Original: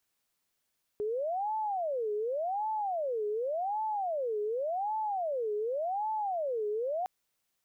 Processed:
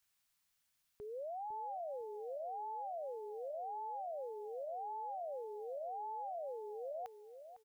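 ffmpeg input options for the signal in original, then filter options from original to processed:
-f lavfi -i "aevalsrc='0.0335*sin(2*PI*(644.5*t-228.5/(2*PI*0.88)*sin(2*PI*0.88*t)))':duration=6.06:sample_rate=44100"
-filter_complex "[0:a]equalizer=frequency=390:width=0.96:gain=-14.5,alimiter=level_in=16dB:limit=-24dB:level=0:latency=1:release=18,volume=-16dB,asplit=2[link_01][link_02];[link_02]adelay=504,lowpass=frequency=850:poles=1,volume=-9dB,asplit=2[link_03][link_04];[link_04]adelay=504,lowpass=frequency=850:poles=1,volume=0.25,asplit=2[link_05][link_06];[link_06]adelay=504,lowpass=frequency=850:poles=1,volume=0.25[link_07];[link_03][link_05][link_07]amix=inputs=3:normalize=0[link_08];[link_01][link_08]amix=inputs=2:normalize=0"

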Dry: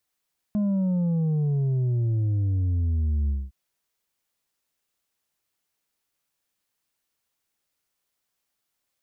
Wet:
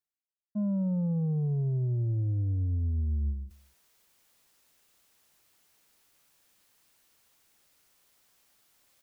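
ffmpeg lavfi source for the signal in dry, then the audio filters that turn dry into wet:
-f lavfi -i "aevalsrc='0.0841*clip((2.96-t)/0.22,0,1)*tanh(1.68*sin(2*PI*210*2.96/log(65/210)*(exp(log(65/210)*t/2.96)-1)))/tanh(1.68)':duration=2.96:sample_rate=44100"
-filter_complex "[0:a]agate=range=-33dB:threshold=-20dB:ratio=3:detection=peak,areverse,acompressor=mode=upward:threshold=-33dB:ratio=2.5,areverse,asplit=2[link_01][link_02];[link_02]adelay=227.4,volume=-24dB,highshelf=frequency=4000:gain=-5.12[link_03];[link_01][link_03]amix=inputs=2:normalize=0"

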